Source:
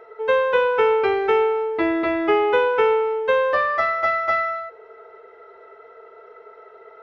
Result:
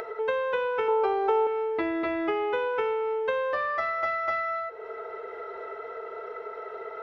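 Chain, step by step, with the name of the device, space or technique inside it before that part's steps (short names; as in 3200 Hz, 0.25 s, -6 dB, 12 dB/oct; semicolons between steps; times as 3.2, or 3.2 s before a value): upward and downward compression (upward compressor, threshold -29 dBFS; compressor 5:1, threshold -26 dBFS, peak gain reduction 11 dB); 0.88–1.47 graphic EQ 125/250/500/1000/2000 Hz -9/-10/+7/+9/-10 dB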